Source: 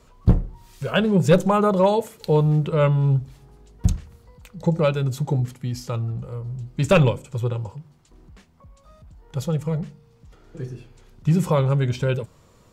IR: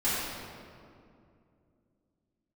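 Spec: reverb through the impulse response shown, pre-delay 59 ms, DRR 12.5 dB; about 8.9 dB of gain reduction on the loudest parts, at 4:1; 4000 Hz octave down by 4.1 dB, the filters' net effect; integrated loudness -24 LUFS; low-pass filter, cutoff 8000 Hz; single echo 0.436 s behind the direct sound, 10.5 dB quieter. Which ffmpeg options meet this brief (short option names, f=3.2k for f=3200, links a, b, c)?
-filter_complex "[0:a]lowpass=8k,equalizer=f=4k:t=o:g=-5.5,acompressor=threshold=-21dB:ratio=4,aecho=1:1:436:0.299,asplit=2[a][b];[1:a]atrim=start_sample=2205,adelay=59[c];[b][c]afir=irnorm=-1:irlink=0,volume=-23.5dB[d];[a][d]amix=inputs=2:normalize=0,volume=3dB"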